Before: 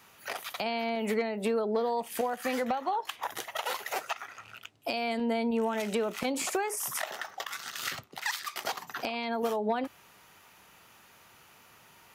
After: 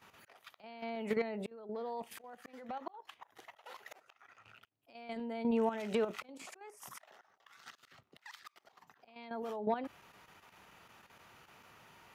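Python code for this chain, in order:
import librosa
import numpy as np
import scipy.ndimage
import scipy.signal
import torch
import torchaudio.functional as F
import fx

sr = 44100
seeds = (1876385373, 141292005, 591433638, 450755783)

y = fx.high_shelf(x, sr, hz=5500.0, db=-11.5)
y = fx.auto_swell(y, sr, attack_ms=668.0)
y = fx.level_steps(y, sr, step_db=10)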